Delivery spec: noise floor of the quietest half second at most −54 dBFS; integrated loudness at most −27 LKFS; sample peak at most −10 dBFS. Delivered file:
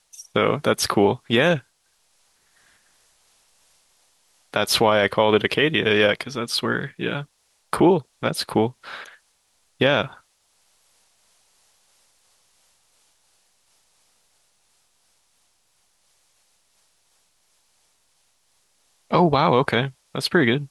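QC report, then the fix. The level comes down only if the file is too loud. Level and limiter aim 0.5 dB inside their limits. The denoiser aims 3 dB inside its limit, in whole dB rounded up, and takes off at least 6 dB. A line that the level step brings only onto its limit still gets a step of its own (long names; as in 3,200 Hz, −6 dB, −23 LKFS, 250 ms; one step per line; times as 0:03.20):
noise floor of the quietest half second −66 dBFS: in spec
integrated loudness −21.0 LKFS: out of spec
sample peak −5.0 dBFS: out of spec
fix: level −6.5 dB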